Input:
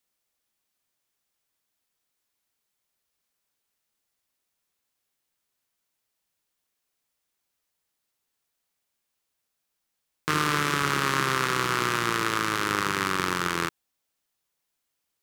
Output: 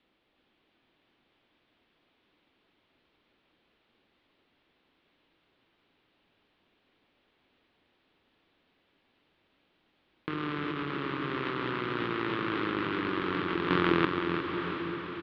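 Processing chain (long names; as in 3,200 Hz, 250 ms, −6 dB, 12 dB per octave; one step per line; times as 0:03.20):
parametric band 1,500 Hz −2.5 dB 1.6 octaves
repeating echo 359 ms, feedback 18%, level −5 dB
compressor whose output falls as the input rises −38 dBFS, ratio −1
Butterworth low-pass 3,600 Hz 36 dB per octave
parametric band 300 Hz +8.5 dB 1 octave
feedback delay with all-pass diffusion 752 ms, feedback 49%, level −7.5 dB
level +3.5 dB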